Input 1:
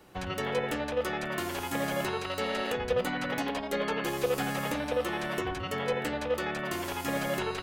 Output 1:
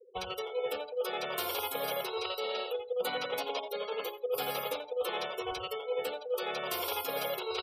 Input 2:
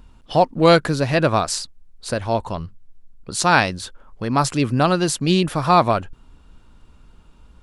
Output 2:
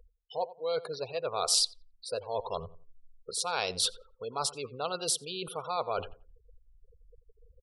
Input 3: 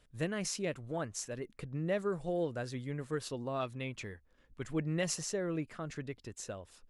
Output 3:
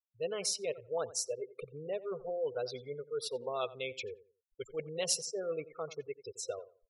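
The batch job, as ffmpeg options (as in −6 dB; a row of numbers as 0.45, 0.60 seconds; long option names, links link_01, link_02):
-filter_complex "[0:a]superequalizer=7b=3.55:11b=0.398:13b=1.41:15b=0.501:16b=0.631,areverse,acompressor=threshold=-30dB:ratio=12,areverse,aresample=32000,aresample=44100,crystalizer=i=2.5:c=0,lowshelf=frequency=420:width_type=q:width=1.5:gain=-9.5,afftfilt=real='re*gte(hypot(re,im),0.0112)':imag='im*gte(hypot(re,im),0.0112)':win_size=1024:overlap=0.75,asplit=2[link_01][link_02];[link_02]adelay=88,lowpass=frequency=1500:poles=1,volume=-16dB,asplit=2[link_03][link_04];[link_04]adelay=88,lowpass=frequency=1500:poles=1,volume=0.26,asplit=2[link_05][link_06];[link_06]adelay=88,lowpass=frequency=1500:poles=1,volume=0.26[link_07];[link_01][link_03][link_05][link_07]amix=inputs=4:normalize=0"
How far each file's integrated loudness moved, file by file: −3.0, −13.5, 0.0 LU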